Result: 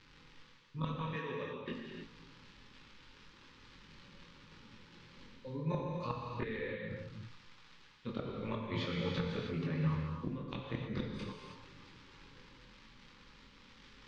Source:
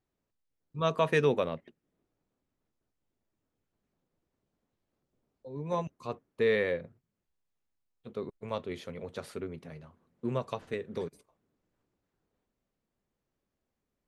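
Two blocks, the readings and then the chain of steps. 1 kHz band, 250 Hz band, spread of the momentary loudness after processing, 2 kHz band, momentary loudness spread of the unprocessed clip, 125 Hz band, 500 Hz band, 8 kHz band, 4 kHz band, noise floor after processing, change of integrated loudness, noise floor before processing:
−6.0 dB, −0.5 dB, 22 LU, −7.0 dB, 17 LU, +1.5 dB, −10.5 dB, can't be measured, −1.5 dB, −60 dBFS, −6.5 dB, −85 dBFS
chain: surface crackle 210 per second −61 dBFS
Butterworth band-reject 680 Hz, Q 2.5
gate with flip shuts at −27 dBFS, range −33 dB
low-pass filter 4,600 Hz 24 dB per octave
multi-voice chorus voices 6, 0.42 Hz, delay 22 ms, depth 4.2 ms
in parallel at +2 dB: brickwall limiter −37.5 dBFS, peak gain reduction 10 dB
on the sum: parametric band 420 Hz −6 dB 0.67 octaves
reversed playback
downward compressor 6 to 1, threshold −54 dBFS, peak gain reduction 19.5 dB
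reversed playback
reverb whose tail is shaped and stops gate 340 ms flat, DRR −1 dB
level +16 dB

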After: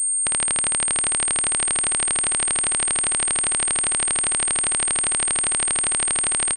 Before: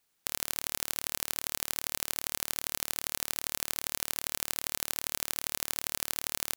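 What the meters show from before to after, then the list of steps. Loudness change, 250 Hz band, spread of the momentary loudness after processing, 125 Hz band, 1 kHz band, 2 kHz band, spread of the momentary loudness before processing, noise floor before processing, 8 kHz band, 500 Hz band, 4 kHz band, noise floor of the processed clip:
+14.0 dB, +11.5 dB, 0 LU, +11.0 dB, +11.5 dB, +11.0 dB, 0 LU, −76 dBFS, +19.0 dB, +11.5 dB, +7.0 dB, −22 dBFS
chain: repeating echo 664 ms, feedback 34%, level −5 dB
switching amplifier with a slow clock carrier 8,600 Hz
level +4.5 dB

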